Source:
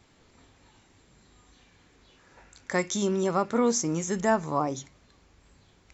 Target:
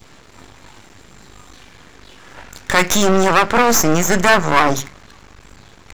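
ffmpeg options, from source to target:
ffmpeg -i in.wav -filter_complex "[0:a]acrossover=split=110|1100|1600[link_01][link_02][link_03][link_04];[link_03]acontrast=51[link_05];[link_01][link_02][link_05][link_04]amix=inputs=4:normalize=0,aeval=exprs='max(val(0),0)':channel_layout=same,apsyclip=24dB,adynamicequalizer=threshold=0.0631:dfrequency=1500:dqfactor=0.81:tfrequency=1500:tqfactor=0.81:attack=5:release=100:ratio=0.375:range=2:mode=boostabove:tftype=bell,volume=-5dB" out.wav

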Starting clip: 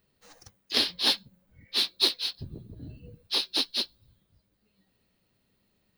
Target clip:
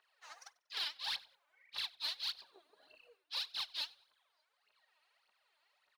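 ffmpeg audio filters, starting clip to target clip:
ffmpeg -i in.wav -filter_complex "[0:a]highpass=frequency=810:width=0.5412,highpass=frequency=810:width=1.3066,aemphasis=mode=reproduction:type=75fm,areverse,acompressor=threshold=-42dB:ratio=8,areverse,aphaser=in_gain=1:out_gain=1:delay=3.5:decay=0.73:speed=1.7:type=triangular,asoftclip=type=tanh:threshold=-31dB,asplit=2[link_01][link_02];[link_02]asplit=2[link_03][link_04];[link_03]adelay=95,afreqshift=-92,volume=-23.5dB[link_05];[link_04]adelay=190,afreqshift=-184,volume=-33.1dB[link_06];[link_05][link_06]amix=inputs=2:normalize=0[link_07];[link_01][link_07]amix=inputs=2:normalize=0,volume=2.5dB" out.wav

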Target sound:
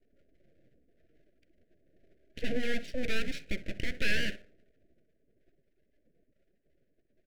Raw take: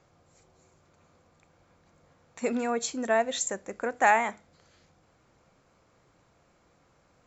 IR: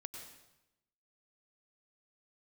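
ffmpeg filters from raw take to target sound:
-filter_complex "[0:a]lowpass=frequency=2700:width=0.5412,lowpass=frequency=2700:width=1.3066,afftdn=noise_reduction=32:noise_floor=-54,lowshelf=frequency=150:gain=4.5,asplit=2[link_01][link_02];[link_02]acompressor=threshold=-33dB:ratio=6,volume=-1dB[link_03];[link_01][link_03]amix=inputs=2:normalize=0,asplit=2[link_04][link_05];[link_05]highpass=frequency=720:poles=1,volume=21dB,asoftclip=type=tanh:threshold=-7.5dB[link_06];[link_04][link_06]amix=inputs=2:normalize=0,lowpass=frequency=1100:poles=1,volume=-6dB,asplit=2[link_07][link_08];[link_08]adelay=63,lowpass=frequency=1200:poles=1,volume=-13dB,asplit=2[link_09][link_10];[link_10]adelay=63,lowpass=frequency=1200:poles=1,volume=0.3,asplit=2[link_11][link_12];[link_12]adelay=63,lowpass=frequency=1200:poles=1,volume=0.3[link_13];[link_07][link_09][link_11][link_13]amix=inputs=4:normalize=0,aeval=exprs='abs(val(0))':channel_layout=same,asuperstop=centerf=1000:order=8:qfactor=0.99,volume=-6.5dB"

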